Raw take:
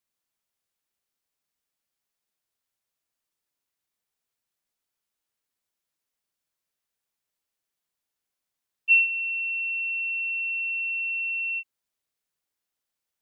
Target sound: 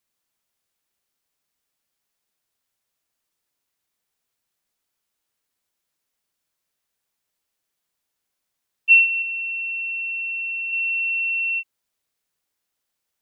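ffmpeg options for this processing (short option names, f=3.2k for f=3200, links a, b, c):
-filter_complex "[0:a]asettb=1/sr,asplit=3[a][b][c];[a]atrim=end=9.224[d];[b]atrim=start=9.22:end=10.73,asetpts=PTS-STARTPTS,afade=t=in:d=0.004:c=qsin,afade=t=out:st=1.506:d=0.004:c=qsin,aemphasis=mode=reproduction:type=75kf[e];[c]atrim=start=10.726[f];[d][e]acrossfade=d=0.004:c1=hsin:c2=qsin[g];[g][f]acrossfade=d=0.004:c1=qsin:c2=hsin,volume=5.5dB"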